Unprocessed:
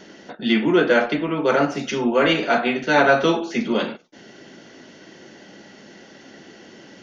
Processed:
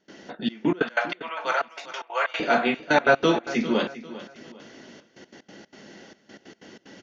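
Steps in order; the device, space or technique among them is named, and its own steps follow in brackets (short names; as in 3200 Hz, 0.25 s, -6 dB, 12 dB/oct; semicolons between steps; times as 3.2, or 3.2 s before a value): 0.82–2.4 inverse Chebyshev high-pass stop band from 200 Hz, stop band 60 dB; trance gate with a delay (step gate ".xxxxx..x.x.xx" 186 bpm -24 dB; feedback echo 0.399 s, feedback 35%, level -15.5 dB); gain -2 dB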